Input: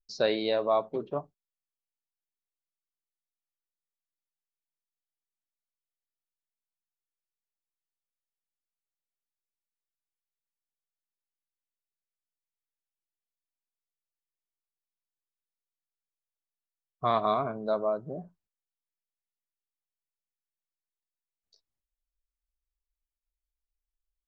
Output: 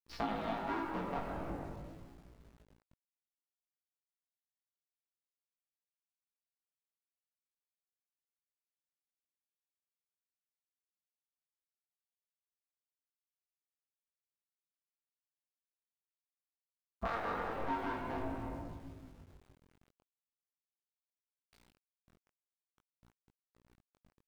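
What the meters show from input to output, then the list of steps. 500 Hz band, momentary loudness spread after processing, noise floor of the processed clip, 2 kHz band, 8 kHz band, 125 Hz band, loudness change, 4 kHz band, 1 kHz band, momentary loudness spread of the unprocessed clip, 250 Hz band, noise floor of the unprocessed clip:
-13.5 dB, 16 LU, under -85 dBFS, -1.5 dB, n/a, -2.5 dB, -10.5 dB, -13.0 dB, -6.0 dB, 11 LU, -3.5 dB, under -85 dBFS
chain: cycle switcher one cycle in 2, inverted; LPF 2600 Hz 12 dB/oct; bell 950 Hz +4 dB 1.3 oct; frequency-shifting echo 0.105 s, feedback 52%, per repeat -73 Hz, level -18 dB; shoebox room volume 1500 m³, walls mixed, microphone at 1.7 m; compressor 5:1, threshold -38 dBFS, peak gain reduction 18.5 dB; buzz 60 Hz, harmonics 17, -69 dBFS -8 dB/oct; low shelf 78 Hz +8 dB; sample gate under -58 dBFS; chorus 0.43 Hz, delay 17.5 ms, depth 4.8 ms; gain +3.5 dB

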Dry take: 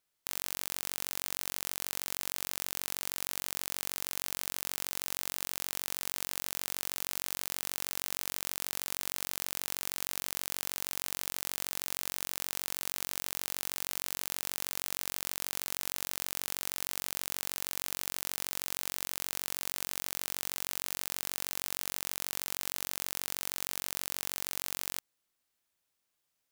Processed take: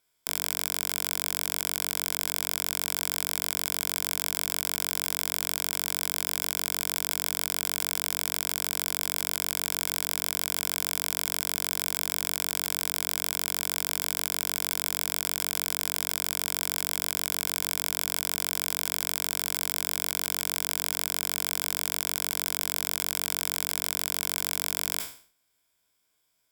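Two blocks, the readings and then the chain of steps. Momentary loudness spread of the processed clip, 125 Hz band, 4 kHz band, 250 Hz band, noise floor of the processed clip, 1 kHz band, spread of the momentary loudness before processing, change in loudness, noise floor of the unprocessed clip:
0 LU, +8.5 dB, +8.0 dB, +7.5 dB, -74 dBFS, +7.0 dB, 0 LU, +7.5 dB, -82 dBFS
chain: spectral trails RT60 0.46 s; ripple EQ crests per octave 1.7, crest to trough 9 dB; gain +5 dB

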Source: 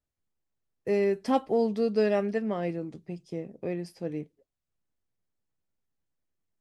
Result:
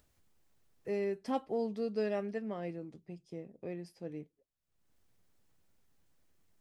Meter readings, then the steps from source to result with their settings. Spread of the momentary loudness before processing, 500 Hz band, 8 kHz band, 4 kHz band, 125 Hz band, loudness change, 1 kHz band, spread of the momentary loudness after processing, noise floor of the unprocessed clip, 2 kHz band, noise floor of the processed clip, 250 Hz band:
14 LU, -9.0 dB, n/a, -9.0 dB, -9.0 dB, -9.0 dB, -9.0 dB, 14 LU, under -85 dBFS, -9.0 dB, -81 dBFS, -9.0 dB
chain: upward compressor, threshold -43 dBFS; gain -9 dB

